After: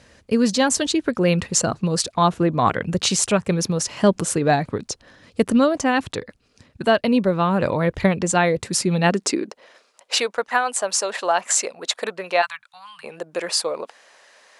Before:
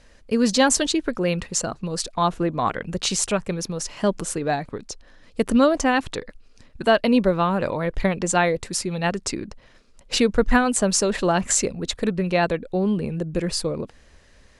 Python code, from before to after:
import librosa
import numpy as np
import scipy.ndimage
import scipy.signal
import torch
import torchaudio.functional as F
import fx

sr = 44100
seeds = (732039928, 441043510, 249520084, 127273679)

y = fx.ellip_bandstop(x, sr, low_hz=120.0, high_hz=1100.0, order=3, stop_db=60, at=(12.41, 13.03), fade=0.02)
y = fx.rider(y, sr, range_db=4, speed_s=0.5)
y = fx.filter_sweep_highpass(y, sr, from_hz=95.0, to_hz=730.0, start_s=8.6, end_s=9.91, q=1.4)
y = y * librosa.db_to_amplitude(2.0)